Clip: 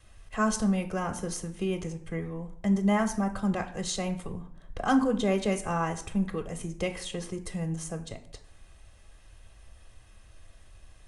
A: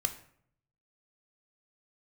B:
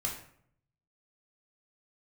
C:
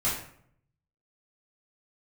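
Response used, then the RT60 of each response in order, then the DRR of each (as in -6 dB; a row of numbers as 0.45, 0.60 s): A; 0.65, 0.65, 0.65 s; 7.0, -1.5, -9.5 dB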